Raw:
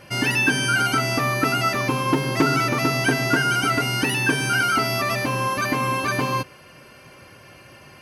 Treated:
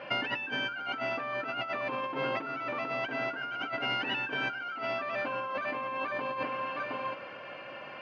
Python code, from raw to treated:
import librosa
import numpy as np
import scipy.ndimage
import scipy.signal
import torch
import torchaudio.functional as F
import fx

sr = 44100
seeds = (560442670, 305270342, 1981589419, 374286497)

y = fx.cabinet(x, sr, low_hz=340.0, low_slope=12, high_hz=3000.0, hz=(380.0, 550.0, 2000.0), db=(-8, 4, -4))
y = y + 10.0 ** (-16.0 / 20.0) * np.pad(y, (int(718 * sr / 1000.0), 0))[:len(y)]
y = fx.over_compress(y, sr, threshold_db=-32.0, ratio=-1.0)
y = y * librosa.db_to_amplitude(-2.5)